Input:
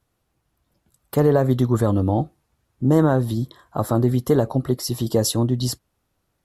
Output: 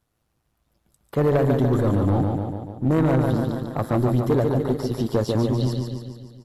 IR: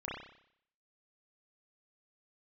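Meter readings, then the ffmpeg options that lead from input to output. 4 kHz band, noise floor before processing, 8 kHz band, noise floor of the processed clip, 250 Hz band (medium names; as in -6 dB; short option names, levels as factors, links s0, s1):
-7.5 dB, -73 dBFS, under -10 dB, -73 dBFS, -1.0 dB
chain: -filter_complex "[0:a]acrossover=split=3600[s0][s1];[s1]acompressor=threshold=0.00501:ratio=4:attack=1:release=60[s2];[s0][s2]amix=inputs=2:normalize=0,aecho=1:1:145|290|435|580|725|870|1015|1160:0.562|0.337|0.202|0.121|0.0729|0.0437|0.0262|0.0157,asplit=2[s3][s4];[s4]aeval=exprs='sgn(val(0))*max(abs(val(0))-0.0316,0)':c=same,volume=0.398[s5];[s3][s5]amix=inputs=2:normalize=0,tremolo=f=110:d=0.519,asoftclip=type=tanh:threshold=0.224"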